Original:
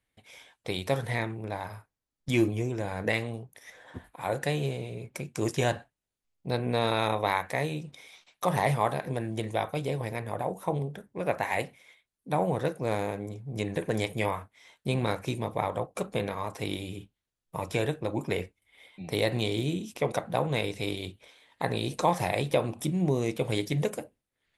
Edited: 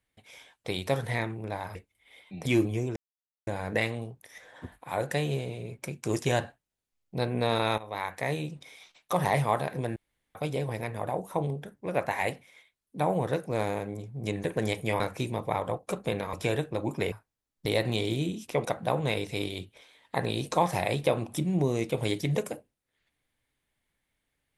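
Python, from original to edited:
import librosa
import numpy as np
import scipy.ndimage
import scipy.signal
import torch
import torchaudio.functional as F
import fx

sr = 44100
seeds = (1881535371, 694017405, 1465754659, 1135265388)

y = fx.edit(x, sr, fx.swap(start_s=1.75, length_s=0.54, other_s=18.42, other_length_s=0.71),
    fx.insert_silence(at_s=2.79, length_s=0.51),
    fx.fade_in_from(start_s=7.1, length_s=0.56, floor_db=-18.5),
    fx.room_tone_fill(start_s=9.28, length_s=0.39),
    fx.cut(start_s=14.32, length_s=0.76),
    fx.cut(start_s=16.41, length_s=1.22), tone=tone)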